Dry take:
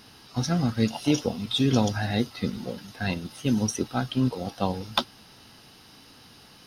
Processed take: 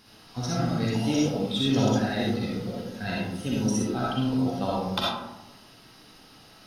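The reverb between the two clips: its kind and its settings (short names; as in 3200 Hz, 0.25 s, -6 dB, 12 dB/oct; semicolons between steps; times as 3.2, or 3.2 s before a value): digital reverb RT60 0.98 s, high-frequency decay 0.4×, pre-delay 20 ms, DRR -5.5 dB; gain -6 dB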